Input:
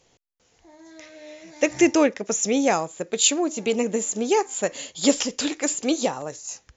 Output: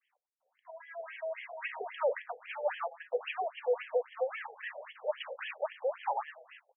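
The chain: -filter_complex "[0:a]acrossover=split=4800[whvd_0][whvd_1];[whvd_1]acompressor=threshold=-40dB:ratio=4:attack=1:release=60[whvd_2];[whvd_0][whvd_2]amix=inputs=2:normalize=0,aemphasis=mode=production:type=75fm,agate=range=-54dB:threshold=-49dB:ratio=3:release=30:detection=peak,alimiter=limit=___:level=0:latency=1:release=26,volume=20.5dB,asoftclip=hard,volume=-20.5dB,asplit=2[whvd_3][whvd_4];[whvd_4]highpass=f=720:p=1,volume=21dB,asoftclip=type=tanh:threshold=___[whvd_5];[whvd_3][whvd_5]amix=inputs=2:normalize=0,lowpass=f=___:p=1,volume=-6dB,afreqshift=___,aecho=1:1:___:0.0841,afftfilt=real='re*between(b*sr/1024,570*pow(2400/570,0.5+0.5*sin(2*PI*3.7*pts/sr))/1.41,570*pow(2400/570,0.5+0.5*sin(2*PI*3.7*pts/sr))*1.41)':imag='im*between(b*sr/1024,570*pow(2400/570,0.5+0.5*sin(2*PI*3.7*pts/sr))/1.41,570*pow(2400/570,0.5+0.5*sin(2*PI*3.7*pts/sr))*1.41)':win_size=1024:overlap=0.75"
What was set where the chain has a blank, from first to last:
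-12dB, -20dB, 1100, 39, 120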